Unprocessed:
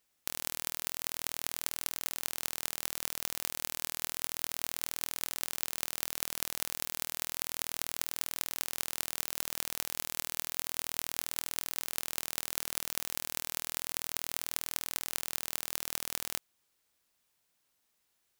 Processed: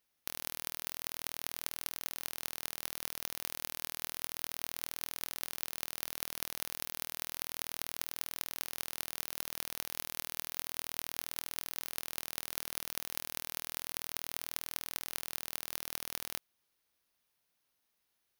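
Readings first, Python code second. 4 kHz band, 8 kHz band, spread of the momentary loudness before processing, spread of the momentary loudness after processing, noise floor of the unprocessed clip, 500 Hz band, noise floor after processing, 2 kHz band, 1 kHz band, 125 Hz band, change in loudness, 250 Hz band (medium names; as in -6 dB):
-3.5 dB, -5.5 dB, 0 LU, 0 LU, -77 dBFS, -3.0 dB, -81 dBFS, -3.0 dB, -3.0 dB, -3.0 dB, -3.5 dB, -3.0 dB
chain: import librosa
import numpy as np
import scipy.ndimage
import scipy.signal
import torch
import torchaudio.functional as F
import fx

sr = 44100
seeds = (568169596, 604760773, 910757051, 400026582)

y = fx.peak_eq(x, sr, hz=7600.0, db=-11.5, octaves=0.22)
y = y * librosa.db_to_amplitude(-3.0)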